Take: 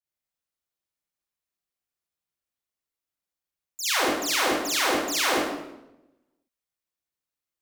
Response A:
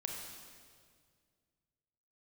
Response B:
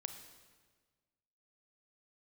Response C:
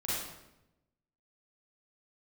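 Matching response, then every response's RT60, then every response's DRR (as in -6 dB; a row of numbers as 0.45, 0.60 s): C; 2.0, 1.5, 0.90 s; 0.5, 7.0, -9.5 dB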